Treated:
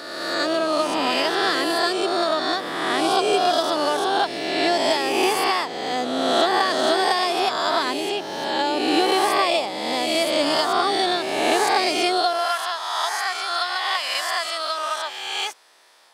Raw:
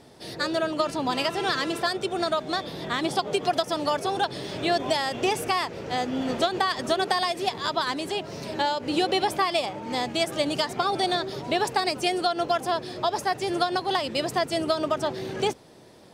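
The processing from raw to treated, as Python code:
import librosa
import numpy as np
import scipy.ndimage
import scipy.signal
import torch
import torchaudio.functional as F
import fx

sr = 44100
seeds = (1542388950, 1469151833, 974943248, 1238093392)

y = fx.spec_swells(x, sr, rise_s=1.56)
y = fx.filter_sweep_highpass(y, sr, from_hz=280.0, to_hz=1200.0, start_s=12.06, end_s=12.56, q=1.1)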